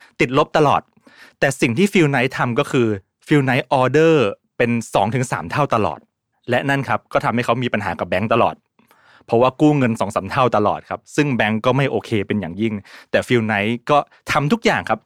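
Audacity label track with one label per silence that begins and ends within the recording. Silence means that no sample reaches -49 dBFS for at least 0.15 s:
3.010000	3.220000	silence
4.350000	4.590000	silence
6.040000	6.440000	silence
8.580000	8.790000	silence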